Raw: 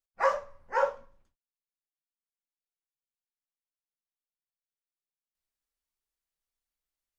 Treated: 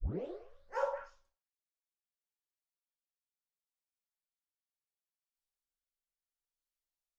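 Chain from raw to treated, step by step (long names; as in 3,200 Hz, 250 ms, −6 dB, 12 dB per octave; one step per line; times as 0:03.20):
turntable start at the beginning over 0.51 s
octave-band graphic EQ 125/250/2,000 Hz −11/−10/−5 dB
echo through a band-pass that steps 103 ms, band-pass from 730 Hz, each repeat 1.4 octaves, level −6 dB
rotating-speaker cabinet horn 0.7 Hz
level −4.5 dB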